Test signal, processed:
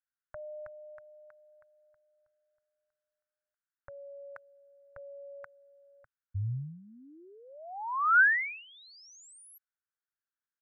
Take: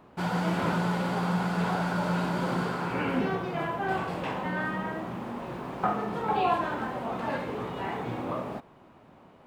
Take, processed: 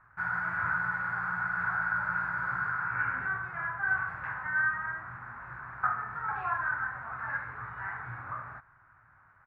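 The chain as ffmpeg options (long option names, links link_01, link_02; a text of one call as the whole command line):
ffmpeg -i in.wav -af "firequalizer=gain_entry='entry(120,0);entry(190,-21);entry(480,-22);entry(810,-8);entry(1500,13);entry(3000,-23)':delay=0.05:min_phase=1,volume=-3.5dB" out.wav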